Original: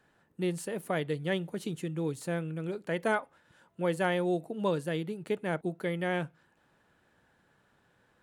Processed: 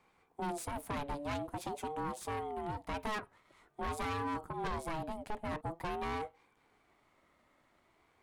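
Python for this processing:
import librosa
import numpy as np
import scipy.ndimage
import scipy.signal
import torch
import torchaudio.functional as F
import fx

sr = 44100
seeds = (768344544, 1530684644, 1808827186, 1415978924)

y = fx.tube_stage(x, sr, drive_db=35.0, bias=0.65)
y = fx.ring_lfo(y, sr, carrier_hz=530.0, swing_pct=20, hz=0.47)
y = y * librosa.db_to_amplitude(4.0)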